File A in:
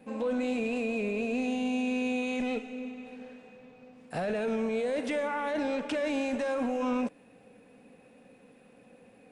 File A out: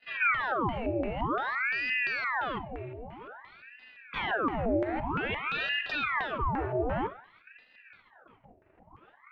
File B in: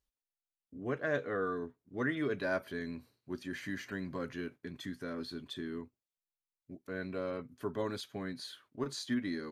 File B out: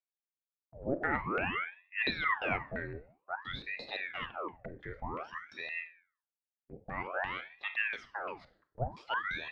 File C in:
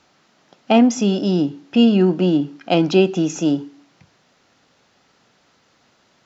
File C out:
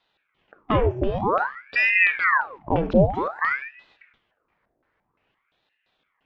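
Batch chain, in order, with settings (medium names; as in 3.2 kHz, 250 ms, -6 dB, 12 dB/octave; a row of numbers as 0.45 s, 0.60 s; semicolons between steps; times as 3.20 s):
gate -56 dBFS, range -12 dB; high-pass 62 Hz; in parallel at +2 dB: compression, threshold -26 dBFS; on the sum: LFO low-pass square 2.9 Hz 490–1700 Hz; Schroeder reverb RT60 0.47 s, combs from 32 ms, DRR 12 dB; ring modulator with a swept carrier 1.2 kHz, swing 90%, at 0.52 Hz; trim -7 dB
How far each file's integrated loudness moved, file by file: +1.0 LU, +2.0 LU, -4.0 LU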